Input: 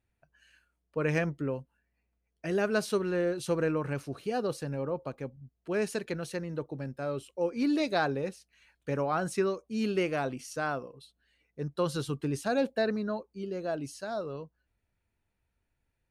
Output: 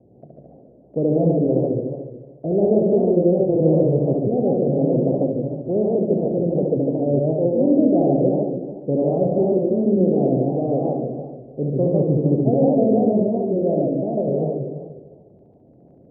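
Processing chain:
compressor on every frequency bin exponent 0.6
Butterworth low-pass 670 Hz 48 dB per octave
noise gate with hold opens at −51 dBFS
high-pass filter 96 Hz
low-shelf EQ 160 Hz +6 dB
flutter between parallel walls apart 11.9 metres, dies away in 1.1 s
feedback echo with a swinging delay time 148 ms, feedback 47%, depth 188 cents, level −3 dB
level +5 dB

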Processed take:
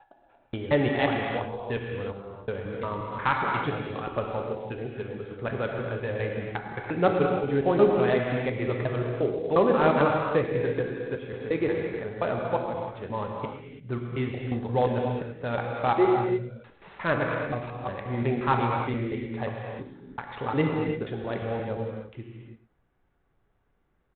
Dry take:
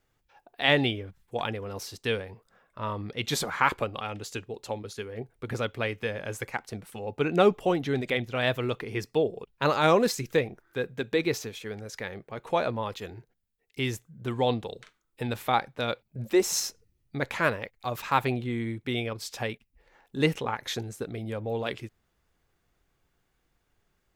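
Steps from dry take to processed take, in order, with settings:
slices reordered back to front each 177 ms, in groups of 3
low-pass filter 1,700 Hz 12 dB per octave
on a send: single-tap delay 109 ms −15 dB
on the sum: reverb whose tail is shaped and stops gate 360 ms flat, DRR 0.5 dB
IMA ADPCM 32 kbit/s 8,000 Hz

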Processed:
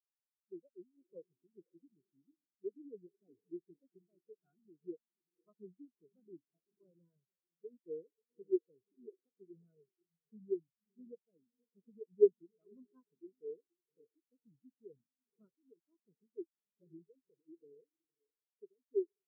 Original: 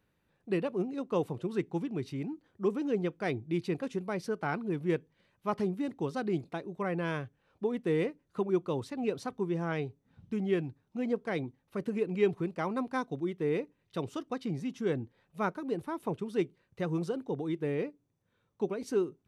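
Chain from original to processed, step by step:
notch comb filter 850 Hz
feedback delay with all-pass diffusion 517 ms, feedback 42%, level −7 dB
every bin expanded away from the loudest bin 4 to 1
level +1 dB

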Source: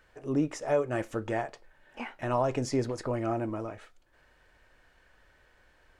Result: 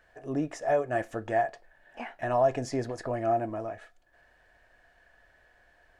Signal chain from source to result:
hollow resonant body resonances 690/1,700 Hz, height 13 dB, ringing for 35 ms
level −3 dB

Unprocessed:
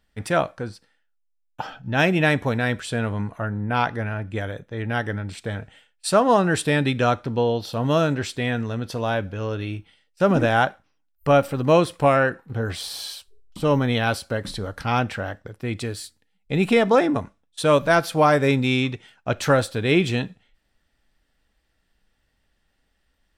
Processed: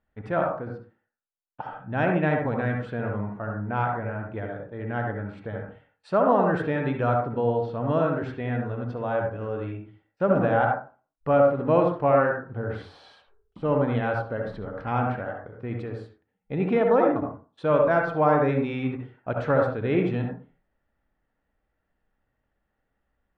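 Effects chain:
low-pass filter 1,500 Hz 12 dB per octave
low-shelf EQ 110 Hz −6.5 dB
convolution reverb RT60 0.35 s, pre-delay 57 ms, DRR 1.5 dB
level −4.5 dB

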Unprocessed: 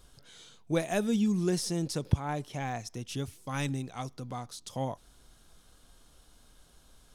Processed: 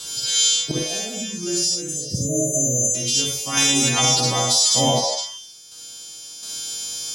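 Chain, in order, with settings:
every partial snapped to a pitch grid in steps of 2 semitones
high-pass filter 130 Hz 12 dB per octave
flat-topped bell 4,600 Hz +10 dB
downward compressor 6 to 1, threshold −28 dBFS, peak gain reduction 12.5 dB
time-frequency box erased 0:01.75–0:02.94, 650–5,900 Hz
sample-and-hold tremolo 1.4 Hz, depth 85%
echo through a band-pass that steps 152 ms, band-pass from 680 Hz, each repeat 1.4 octaves, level −4 dB
convolution reverb, pre-delay 48 ms, DRR −1 dB
boost into a limiter +22.5 dB
level −6.5 dB

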